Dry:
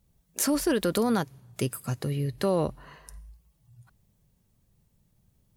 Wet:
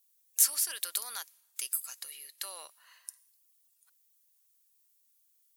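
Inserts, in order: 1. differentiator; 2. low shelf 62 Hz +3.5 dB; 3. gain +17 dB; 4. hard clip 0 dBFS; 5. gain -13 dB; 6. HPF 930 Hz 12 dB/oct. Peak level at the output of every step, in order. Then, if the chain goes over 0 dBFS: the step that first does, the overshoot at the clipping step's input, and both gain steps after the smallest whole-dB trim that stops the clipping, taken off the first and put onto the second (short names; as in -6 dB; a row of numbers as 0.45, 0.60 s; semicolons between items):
-10.0, -10.0, +7.0, 0.0, -13.0, -12.0 dBFS; step 3, 7.0 dB; step 3 +10 dB, step 5 -6 dB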